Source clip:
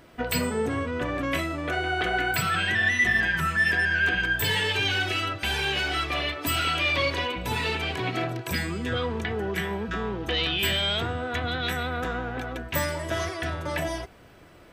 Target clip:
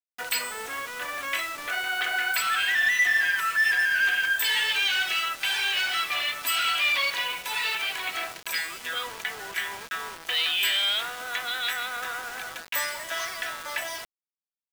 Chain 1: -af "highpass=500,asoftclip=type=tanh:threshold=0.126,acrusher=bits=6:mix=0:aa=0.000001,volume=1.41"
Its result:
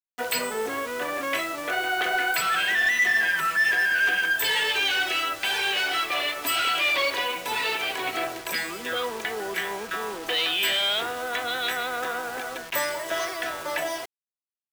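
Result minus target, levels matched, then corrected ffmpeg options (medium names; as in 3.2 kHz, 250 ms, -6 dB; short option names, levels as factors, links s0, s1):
500 Hz band +10.5 dB
-af "highpass=1200,asoftclip=type=tanh:threshold=0.126,acrusher=bits=6:mix=0:aa=0.000001,volume=1.41"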